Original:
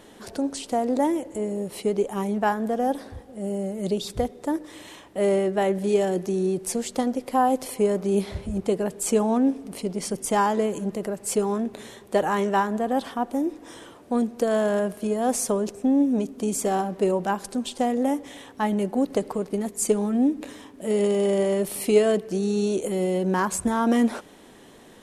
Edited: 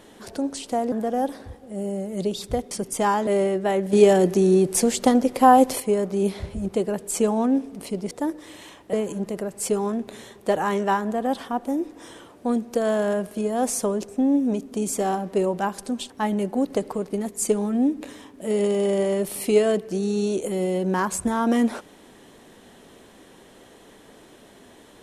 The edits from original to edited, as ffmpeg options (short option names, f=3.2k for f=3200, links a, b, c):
-filter_complex "[0:a]asplit=9[a][b][c][d][e][f][g][h][i];[a]atrim=end=0.922[j];[b]atrim=start=2.578:end=4.372[k];[c]atrim=start=10.028:end=10.592[l];[d]atrim=start=5.188:end=5.852[m];[e]atrim=start=5.848:end=7.722,asetpts=PTS-STARTPTS,volume=7dB[n];[f]atrim=start=7.718:end=10.032[o];[g]atrim=start=4.368:end=5.192[p];[h]atrim=start=10.588:end=17.762[q];[i]atrim=start=18.498[r];[j][k]acrossfade=d=0.004:c1=hsin:c2=hsin[s];[s][l]acrossfade=d=0.004:c1=hsin:c2=hsin[t];[t][m]acrossfade=d=0.004:c1=hsin:c2=hsin[u];[u][n]acrossfade=d=0.004:c1=hsin:c2=hsin[v];[v][o]acrossfade=d=0.004:c1=hsin:c2=hsin[w];[w][p]acrossfade=d=0.004:c1=hsin:c2=hsin[x];[x][q]acrossfade=d=0.004:c1=hsin:c2=hsin[y];[y][r]acrossfade=d=0.004:c1=hsin:c2=hsin"